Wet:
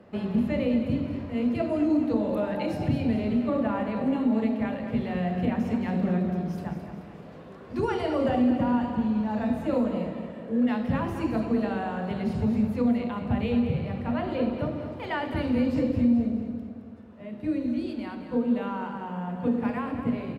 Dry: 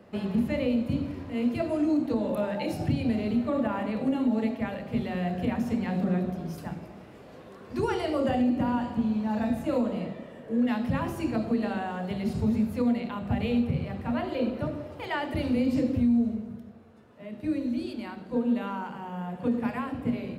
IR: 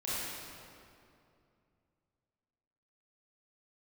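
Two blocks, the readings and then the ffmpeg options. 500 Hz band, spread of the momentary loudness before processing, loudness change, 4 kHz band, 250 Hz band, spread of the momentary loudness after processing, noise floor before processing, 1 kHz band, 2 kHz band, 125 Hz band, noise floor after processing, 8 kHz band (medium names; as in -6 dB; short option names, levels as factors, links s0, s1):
+1.5 dB, 11 LU, +1.5 dB, -1.0 dB, +1.5 dB, 10 LU, -48 dBFS, +1.5 dB, +0.5 dB, +1.5 dB, -44 dBFS, no reading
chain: -filter_complex "[0:a]aemphasis=mode=reproduction:type=cd,aecho=1:1:216|432|648|864|1080:0.335|0.154|0.0709|0.0326|0.015,asplit=2[s0][s1];[1:a]atrim=start_sample=2205[s2];[s1][s2]afir=irnorm=-1:irlink=0,volume=0.119[s3];[s0][s3]amix=inputs=2:normalize=0"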